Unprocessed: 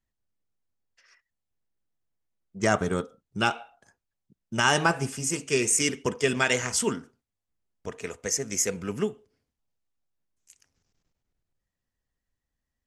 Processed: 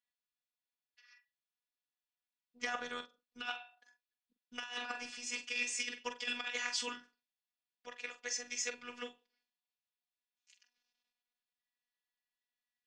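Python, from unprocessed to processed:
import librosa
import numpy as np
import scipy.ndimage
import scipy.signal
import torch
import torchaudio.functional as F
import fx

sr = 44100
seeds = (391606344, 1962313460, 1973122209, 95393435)

y = scipy.signal.sosfilt(scipy.signal.butter(4, 3900.0, 'lowpass', fs=sr, output='sos'), x)
y = np.diff(y, prepend=0.0)
y = fx.over_compress(y, sr, threshold_db=-41.0, ratio=-0.5)
y = fx.robotise(y, sr, hz=243.0)
y = fx.doubler(y, sr, ms=44.0, db=-10)
y = y * librosa.db_to_amplitude(6.5)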